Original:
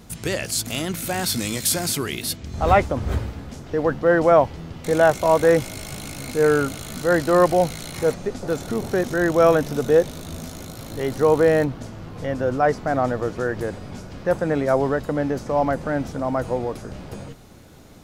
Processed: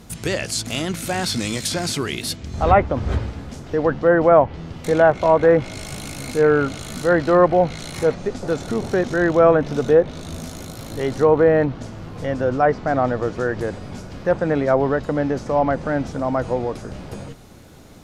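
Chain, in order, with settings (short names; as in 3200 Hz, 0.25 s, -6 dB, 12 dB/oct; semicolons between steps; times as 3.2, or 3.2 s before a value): treble ducked by the level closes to 1900 Hz, closed at -12 dBFS; gain +2 dB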